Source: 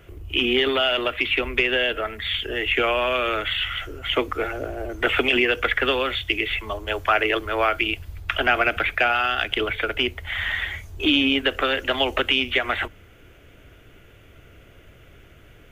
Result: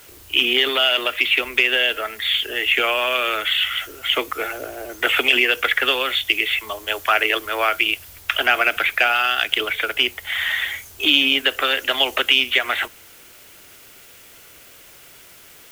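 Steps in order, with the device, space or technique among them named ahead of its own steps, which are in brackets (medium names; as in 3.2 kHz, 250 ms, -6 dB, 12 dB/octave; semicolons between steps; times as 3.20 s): turntable without a phono preamp (RIAA curve recording; white noise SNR 26 dB); trim +1 dB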